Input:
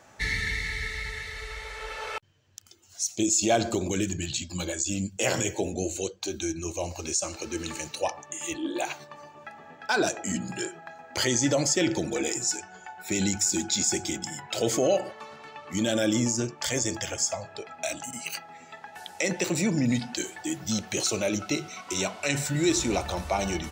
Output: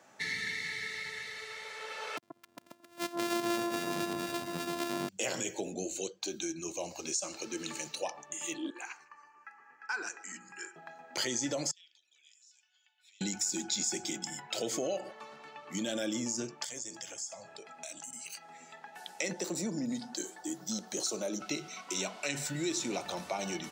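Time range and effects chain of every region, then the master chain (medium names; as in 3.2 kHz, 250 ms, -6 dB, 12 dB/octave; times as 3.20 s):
2.17–5.09 s: sorted samples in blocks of 128 samples + echo whose repeats swap between lows and highs 133 ms, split 1.2 kHz, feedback 63%, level -2.5 dB
8.70–10.76 s: three-band isolator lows -23 dB, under 450 Hz, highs -21 dB, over 7.6 kHz + static phaser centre 1.5 kHz, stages 4 + delay 157 ms -23 dB
11.71–13.21 s: compression, threshold -38 dBFS + ladder band-pass 3.6 kHz, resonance 60%
16.64–18.75 s: peaking EQ 8.3 kHz +8.5 dB 1.2 oct + compression 2.5:1, threshold -41 dBFS
19.33–21.41 s: high-pass 170 Hz + peaking EQ 2.5 kHz -13 dB 0.86 oct
whole clip: compression 2.5:1, threshold -27 dBFS; dynamic bell 4.7 kHz, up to +3 dB, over -46 dBFS, Q 0.84; high-pass 150 Hz 24 dB/octave; trim -5.5 dB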